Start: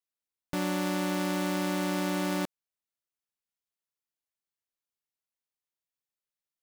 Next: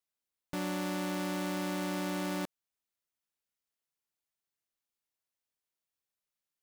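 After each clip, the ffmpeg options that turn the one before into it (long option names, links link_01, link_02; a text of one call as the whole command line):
ffmpeg -i in.wav -af "alimiter=level_in=5dB:limit=-24dB:level=0:latency=1:release=22,volume=-5dB,volume=1dB" out.wav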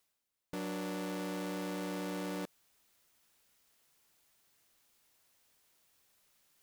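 ffmpeg -i in.wav -af "asoftclip=type=tanh:threshold=-40dB,areverse,acompressor=mode=upward:threshold=-60dB:ratio=2.5,areverse,volume=3.5dB" out.wav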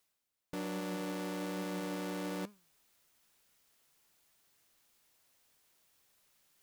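ffmpeg -i in.wav -af "flanger=delay=4.7:depth=3.5:regen=90:speed=1.2:shape=triangular,volume=4.5dB" out.wav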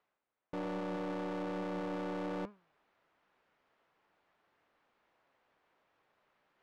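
ffmpeg -i in.wav -filter_complex "[0:a]adynamicsmooth=sensitivity=4.5:basefreq=1600,asplit=2[link_01][link_02];[link_02]highpass=frequency=720:poles=1,volume=16dB,asoftclip=type=tanh:threshold=-33.5dB[link_03];[link_01][link_03]amix=inputs=2:normalize=0,lowpass=frequency=2600:poles=1,volume=-6dB,volume=1dB" out.wav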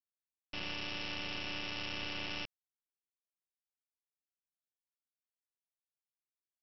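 ffmpeg -i in.wav -af "highpass=frequency=2800:width_type=q:width=7.2,aresample=11025,acrusher=bits=6:dc=4:mix=0:aa=0.000001,aresample=44100,volume=9.5dB" out.wav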